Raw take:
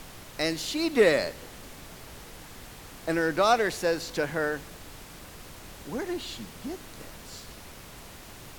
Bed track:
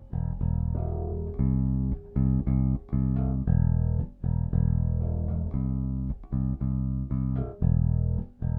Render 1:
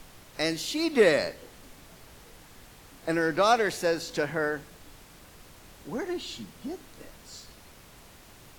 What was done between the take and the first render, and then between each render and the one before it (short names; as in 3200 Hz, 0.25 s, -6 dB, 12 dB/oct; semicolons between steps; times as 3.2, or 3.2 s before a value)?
noise print and reduce 6 dB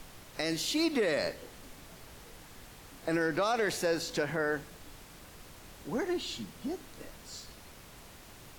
limiter -20.5 dBFS, peak gain reduction 11.5 dB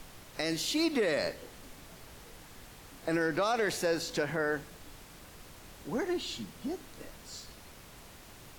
nothing audible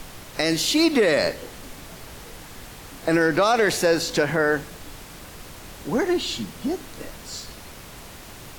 gain +10.5 dB